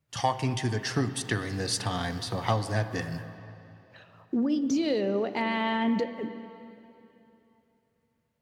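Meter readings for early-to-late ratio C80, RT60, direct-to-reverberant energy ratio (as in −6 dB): 11.0 dB, 3.0 s, 10.0 dB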